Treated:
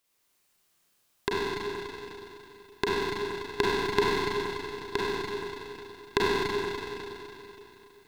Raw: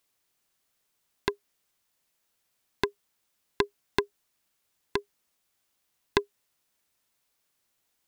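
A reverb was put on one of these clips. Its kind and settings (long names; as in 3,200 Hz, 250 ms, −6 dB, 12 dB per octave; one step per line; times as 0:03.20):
four-comb reverb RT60 3.2 s, combs from 32 ms, DRR −7.5 dB
level −2 dB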